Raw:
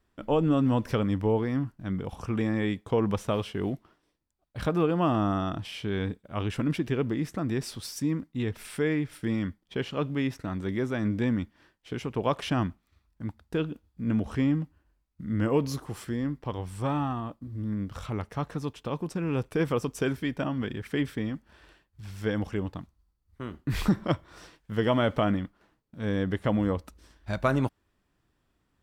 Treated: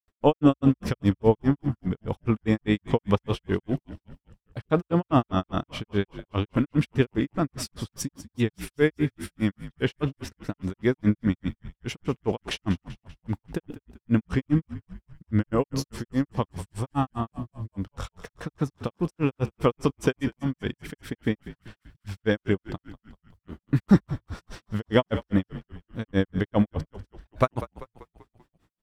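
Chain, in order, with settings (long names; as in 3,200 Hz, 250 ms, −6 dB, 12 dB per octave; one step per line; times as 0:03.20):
granular cloud 132 ms, grains 4.9 per second, pitch spread up and down by 0 semitones
tape wow and flutter 17 cents
echo with shifted repeats 194 ms, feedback 52%, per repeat −56 Hz, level −15 dB
level +8.5 dB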